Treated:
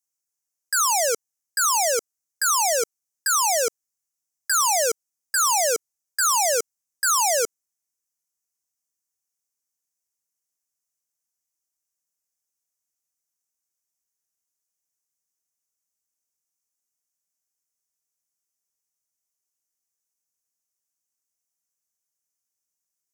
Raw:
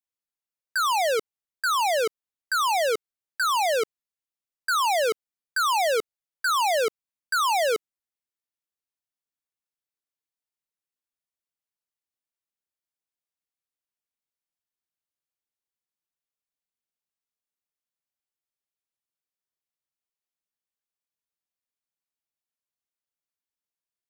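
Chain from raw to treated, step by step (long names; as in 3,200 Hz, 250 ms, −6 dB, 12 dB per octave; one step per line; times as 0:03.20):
wrong playback speed 24 fps film run at 25 fps
high shelf with overshoot 4,800 Hz +9 dB, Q 3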